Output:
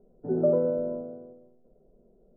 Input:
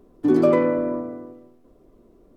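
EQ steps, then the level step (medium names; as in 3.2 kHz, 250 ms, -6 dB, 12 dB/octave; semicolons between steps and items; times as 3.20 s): elliptic low-pass 1.4 kHz, stop band 40 dB; distance through air 420 m; static phaser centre 300 Hz, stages 6; -2.5 dB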